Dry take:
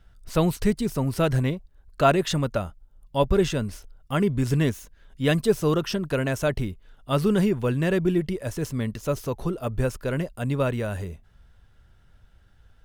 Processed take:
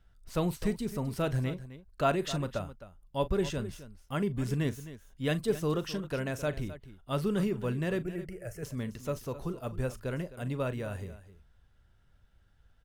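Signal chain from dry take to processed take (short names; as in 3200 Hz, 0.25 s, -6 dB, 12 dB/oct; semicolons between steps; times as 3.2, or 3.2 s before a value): 8.01–8.63 fixed phaser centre 1000 Hz, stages 6; on a send: tapped delay 40/261 ms -15.5/-14.5 dB; on the sum: gain -8.5 dB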